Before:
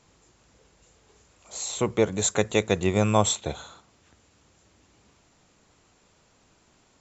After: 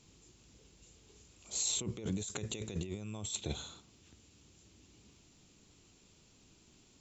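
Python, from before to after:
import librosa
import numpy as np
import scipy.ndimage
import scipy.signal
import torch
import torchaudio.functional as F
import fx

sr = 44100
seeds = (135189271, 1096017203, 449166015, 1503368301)

y = fx.band_shelf(x, sr, hz=1000.0, db=-10.0, octaves=2.3)
y = fx.over_compress(y, sr, threshold_db=-33.0, ratio=-1.0)
y = F.gain(torch.from_numpy(y), -6.0).numpy()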